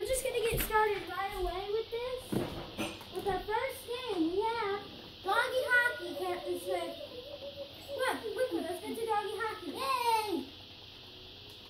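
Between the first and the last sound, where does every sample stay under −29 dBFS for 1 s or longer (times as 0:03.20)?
0:06.86–0:08.00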